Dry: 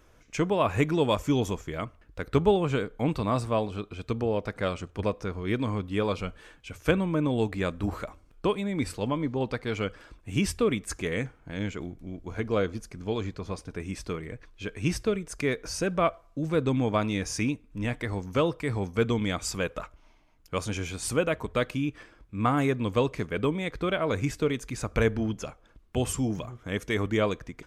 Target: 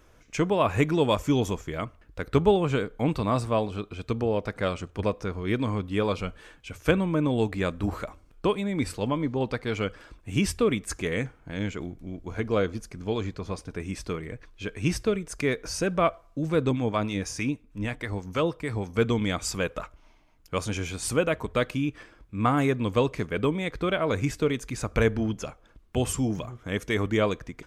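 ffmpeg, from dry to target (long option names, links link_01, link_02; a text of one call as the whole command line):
ffmpeg -i in.wav -filter_complex "[0:a]asettb=1/sr,asplit=3[link_01][link_02][link_03];[link_01]atrim=end=16.714[link_04];[link_02]atrim=start=16.71:end=18.9,asetpts=PTS-STARTPTS,afade=type=in:duration=0.004:curve=qsin,afade=type=out:start_time=2.186:duration=0.004:curve=qsin,acrossover=split=730[link_05][link_06];[link_05]aeval=exprs='val(0)*(1-0.5/2+0.5/2*cos(2*PI*6.3*n/s))':channel_layout=same[link_07];[link_06]aeval=exprs='val(0)*(1-0.5/2-0.5/2*cos(2*PI*6.3*n/s))':channel_layout=same[link_08];[link_07][link_08]amix=inputs=2:normalize=0[link_09];[link_03]atrim=start=18.896[link_10];[link_04][link_09]acrossfade=duration=0.004:curve1=hsin:curve2=qsin[link_11];[link_11][link_10]acrossfade=duration=0.004:curve1=qsin:curve2=hsin,volume=1.5dB" out.wav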